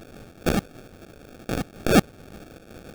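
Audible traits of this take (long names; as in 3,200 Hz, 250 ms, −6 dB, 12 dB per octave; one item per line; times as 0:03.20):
a quantiser's noise floor 8 bits, dither triangular
phaser sweep stages 2, 1.7 Hz, lowest notch 380–1,200 Hz
aliases and images of a low sample rate 1,000 Hz, jitter 0%
amplitude modulation by smooth noise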